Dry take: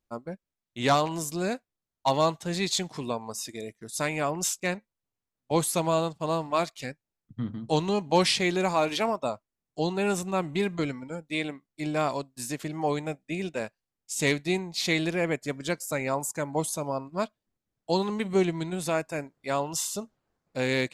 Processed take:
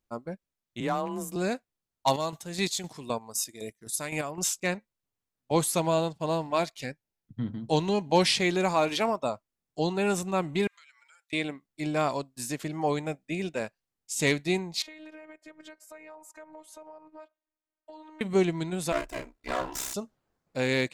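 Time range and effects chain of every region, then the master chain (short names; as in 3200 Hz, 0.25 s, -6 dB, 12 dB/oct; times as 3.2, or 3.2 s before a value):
0.8–1.36 bell 4700 Hz -12.5 dB 1.7 oct + compressor 2:1, threshold -29 dBFS + frequency shift +28 Hz
2.07–4.39 high shelf 7400 Hz +11.5 dB + chopper 3.9 Hz, depth 60%, duty 35%
5.8–8.32 bell 7700 Hz -2.5 dB 0.33 oct + notch 1200 Hz, Q 5.9
10.67–11.33 HPF 1400 Hz 24 dB/oct + compressor 4:1, threshold -56 dBFS
14.82–18.21 three-band isolator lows -16 dB, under 370 Hz, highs -15 dB, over 2600 Hz + compressor, threshold -42 dBFS + robotiser 310 Hz
18.92–19.94 minimum comb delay 3 ms + ring modulator 32 Hz + doubler 34 ms -5.5 dB
whole clip: dry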